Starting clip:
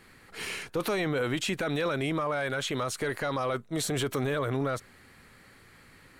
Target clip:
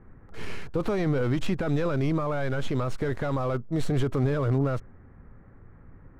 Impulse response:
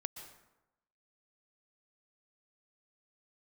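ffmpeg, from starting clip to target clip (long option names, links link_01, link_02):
-filter_complex "[0:a]acrossover=split=1500[link_01][link_02];[link_02]acrusher=bits=5:dc=4:mix=0:aa=0.000001[link_03];[link_01][link_03]amix=inputs=2:normalize=0,aemphasis=mode=reproduction:type=bsi"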